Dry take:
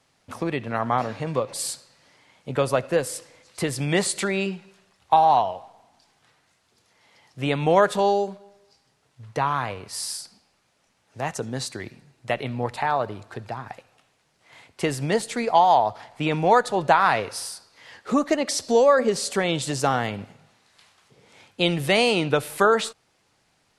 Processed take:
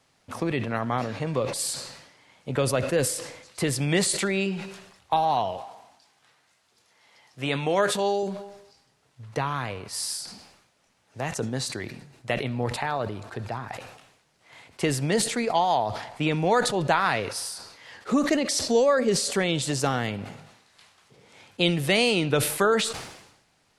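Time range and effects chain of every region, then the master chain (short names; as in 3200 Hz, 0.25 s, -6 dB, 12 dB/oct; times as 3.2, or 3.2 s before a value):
5.57–8.23 HPF 45 Hz + low shelf 350 Hz -7.5 dB + doubler 15 ms -12 dB
whole clip: dynamic EQ 900 Hz, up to -7 dB, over -32 dBFS, Q 0.88; sustainer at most 64 dB/s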